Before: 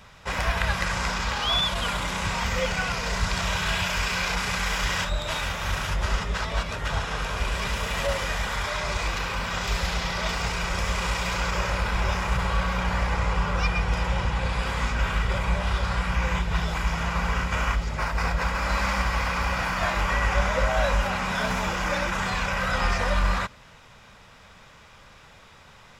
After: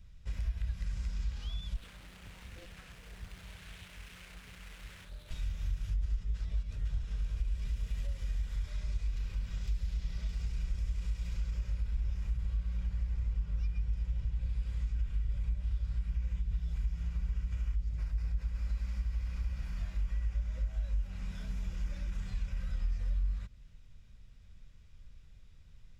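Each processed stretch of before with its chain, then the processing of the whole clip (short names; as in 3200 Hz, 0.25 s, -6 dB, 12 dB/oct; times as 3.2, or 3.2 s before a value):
1.76–5.31 median filter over 9 samples + HPF 540 Hz 6 dB/oct + Doppler distortion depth 0.68 ms
whole clip: low shelf 61 Hz +11.5 dB; compressor, threshold -25 dBFS; passive tone stack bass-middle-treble 10-0-1; gain +2.5 dB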